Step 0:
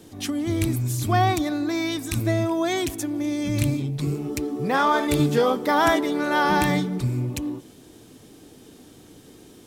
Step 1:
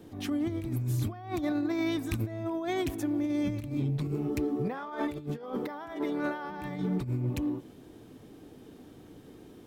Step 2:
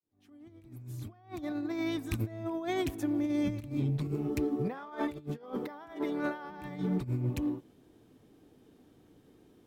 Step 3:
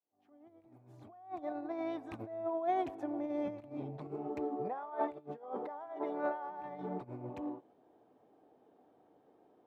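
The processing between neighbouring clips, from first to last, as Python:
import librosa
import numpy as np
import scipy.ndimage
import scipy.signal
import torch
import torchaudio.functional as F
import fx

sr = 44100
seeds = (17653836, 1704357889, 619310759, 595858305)

y1 = fx.peak_eq(x, sr, hz=7900.0, db=-12.5, octaves=2.4)
y1 = fx.over_compress(y1, sr, threshold_db=-26.0, ratio=-0.5)
y1 = y1 * librosa.db_to_amplitude(-5.0)
y2 = fx.fade_in_head(y1, sr, length_s=2.26)
y2 = fx.upward_expand(y2, sr, threshold_db=-47.0, expansion=1.5)
y3 = fx.bandpass_q(y2, sr, hz=730.0, q=2.7)
y3 = y3 * librosa.db_to_amplitude(6.5)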